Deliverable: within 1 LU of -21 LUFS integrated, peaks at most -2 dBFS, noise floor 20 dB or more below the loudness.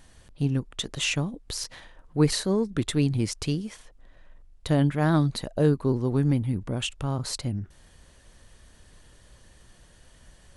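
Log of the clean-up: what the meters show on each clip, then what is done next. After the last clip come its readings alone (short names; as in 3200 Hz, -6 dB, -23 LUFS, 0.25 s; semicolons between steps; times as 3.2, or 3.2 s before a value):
dropouts 1; longest dropout 3.9 ms; loudness -26.5 LUFS; peak -8.5 dBFS; loudness target -21.0 LUFS
-> interpolate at 1.64, 3.9 ms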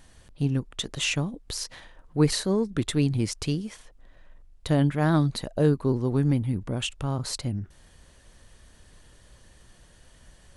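dropouts 0; loudness -26.5 LUFS; peak -8.5 dBFS; loudness target -21.0 LUFS
-> gain +5.5 dB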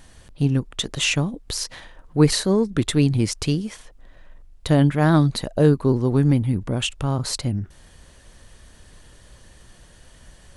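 loudness -21.0 LUFS; peak -3.0 dBFS; noise floor -50 dBFS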